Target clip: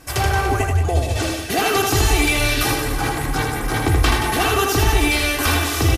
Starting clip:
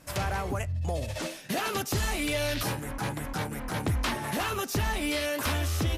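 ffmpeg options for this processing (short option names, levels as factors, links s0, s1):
-filter_complex "[0:a]aecho=1:1:2.6:0.65,asplit=2[s0][s1];[s1]aecho=0:1:80|176|291.2|429.4|595.3:0.631|0.398|0.251|0.158|0.1[s2];[s0][s2]amix=inputs=2:normalize=0,volume=2.66"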